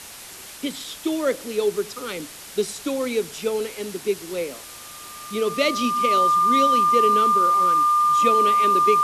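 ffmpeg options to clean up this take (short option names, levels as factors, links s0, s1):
-af "bandreject=f=1200:w=30,afwtdn=0.013"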